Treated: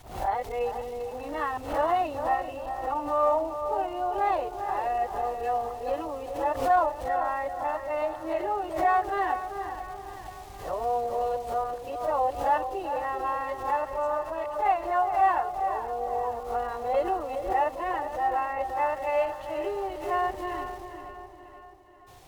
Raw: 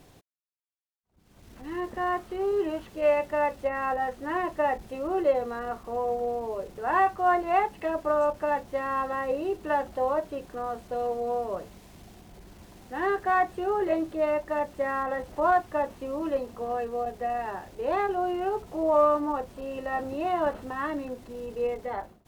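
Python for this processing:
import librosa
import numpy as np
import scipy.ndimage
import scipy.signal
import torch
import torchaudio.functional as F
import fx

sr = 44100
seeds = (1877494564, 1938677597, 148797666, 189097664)

y = x[::-1].copy()
y = fx.peak_eq(y, sr, hz=280.0, db=-8.0, octaves=2.1)
y = fx.echo_feedback(y, sr, ms=477, feedback_pct=49, wet_db=-13.5)
y = fx.rider(y, sr, range_db=5, speed_s=2.0)
y = fx.graphic_eq_31(y, sr, hz=(200, 800, 1600), db=(-11, 7, -4))
y = fx.echo_filtered(y, sr, ms=394, feedback_pct=42, hz=1200.0, wet_db=-7)
y = fx.pre_swell(y, sr, db_per_s=100.0)
y = F.gain(torch.from_numpy(y), -1.0).numpy()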